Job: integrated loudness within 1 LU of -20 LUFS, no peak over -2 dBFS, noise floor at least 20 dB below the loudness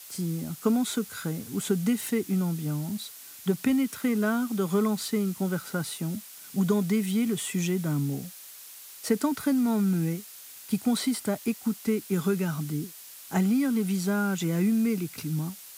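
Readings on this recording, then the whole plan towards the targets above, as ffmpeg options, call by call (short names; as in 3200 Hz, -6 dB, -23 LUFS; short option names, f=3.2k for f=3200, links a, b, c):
noise floor -46 dBFS; noise floor target -48 dBFS; loudness -28.0 LUFS; peak -12.0 dBFS; loudness target -20.0 LUFS
-> -af "afftdn=nr=6:nf=-46"
-af "volume=8dB"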